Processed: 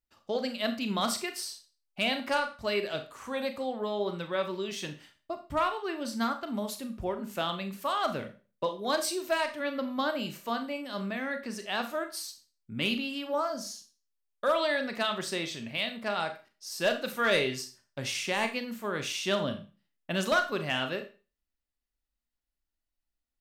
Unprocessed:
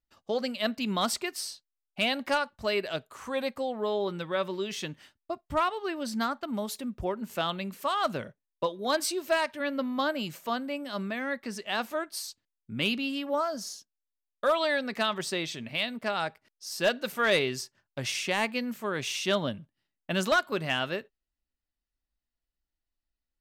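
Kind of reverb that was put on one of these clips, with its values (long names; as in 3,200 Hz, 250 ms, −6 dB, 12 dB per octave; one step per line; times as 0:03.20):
four-comb reverb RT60 0.34 s, combs from 27 ms, DRR 7 dB
level −2 dB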